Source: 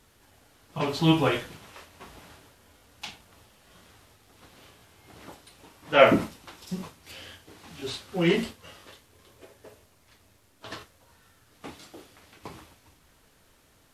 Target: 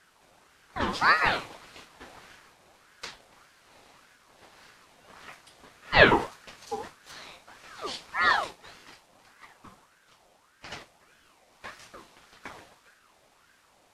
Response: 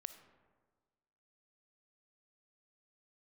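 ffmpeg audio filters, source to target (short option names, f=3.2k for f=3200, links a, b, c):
-af "lowpass=9.7k,aeval=exprs='val(0)*sin(2*PI*1100*n/s+1100*0.45/1.7*sin(2*PI*1.7*n/s))':c=same,volume=2dB"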